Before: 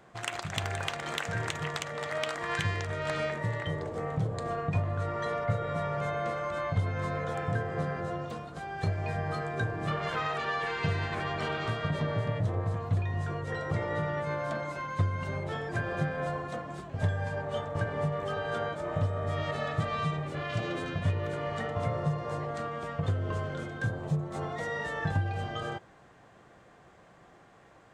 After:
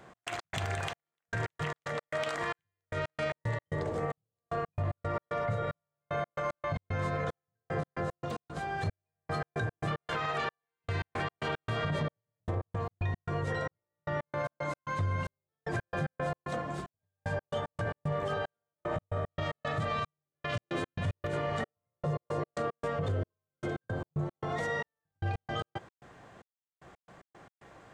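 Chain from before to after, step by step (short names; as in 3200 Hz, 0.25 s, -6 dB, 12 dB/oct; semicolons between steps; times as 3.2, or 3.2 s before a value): step gate "x.x.xxx...x." 113 bpm -60 dB; 21.61–23.88 dynamic EQ 430 Hz, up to +7 dB, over -51 dBFS, Q 1.4; limiter -27 dBFS, peak gain reduction 10 dB; gain +3 dB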